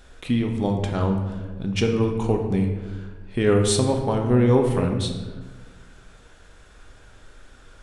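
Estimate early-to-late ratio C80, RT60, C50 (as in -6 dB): 7.5 dB, 1.3 s, 5.5 dB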